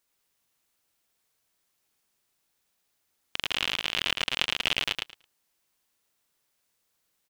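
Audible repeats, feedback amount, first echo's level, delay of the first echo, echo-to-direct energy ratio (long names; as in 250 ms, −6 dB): 2, 15%, −3.0 dB, 110 ms, −3.0 dB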